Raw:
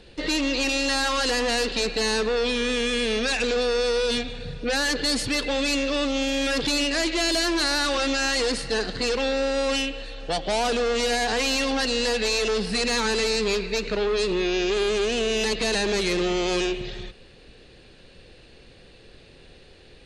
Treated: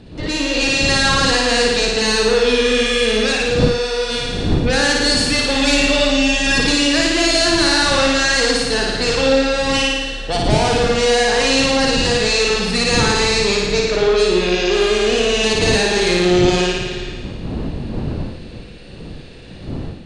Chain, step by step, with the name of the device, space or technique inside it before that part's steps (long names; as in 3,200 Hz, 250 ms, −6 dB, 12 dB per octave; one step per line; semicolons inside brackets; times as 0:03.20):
0:05.56–0:06.61: comb filter 4.8 ms, depth 82%
flutter between parallel walls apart 9.6 metres, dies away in 1.3 s
smartphone video outdoors (wind on the microphone 220 Hz −31 dBFS; automatic gain control gain up to 6 dB; AAC 96 kbit/s 22,050 Hz)